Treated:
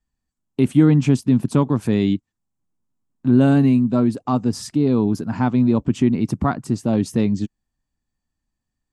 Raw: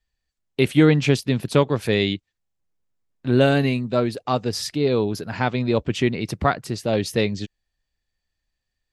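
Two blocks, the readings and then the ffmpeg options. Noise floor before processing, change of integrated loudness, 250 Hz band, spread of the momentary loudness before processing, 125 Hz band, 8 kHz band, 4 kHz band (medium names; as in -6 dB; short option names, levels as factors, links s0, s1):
-81 dBFS, +2.5 dB, +6.0 dB, 9 LU, +3.5 dB, -2.0 dB, -9.0 dB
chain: -filter_complex "[0:a]equalizer=f=125:t=o:w=1:g=4,equalizer=f=250:t=o:w=1:g=12,equalizer=f=500:t=o:w=1:g=-6,equalizer=f=1000:t=o:w=1:g=6,equalizer=f=2000:t=o:w=1:g=-6,equalizer=f=4000:t=o:w=1:g=-6,equalizer=f=8000:t=o:w=1:g=10,asplit=2[s0][s1];[s1]alimiter=limit=0.335:level=0:latency=1:release=75,volume=1.33[s2];[s0][s2]amix=inputs=2:normalize=0,aemphasis=mode=reproduction:type=cd,volume=0.376"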